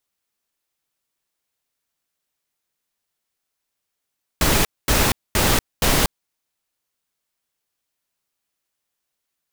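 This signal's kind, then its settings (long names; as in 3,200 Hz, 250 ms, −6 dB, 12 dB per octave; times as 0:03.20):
noise bursts pink, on 0.24 s, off 0.23 s, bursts 4, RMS −17 dBFS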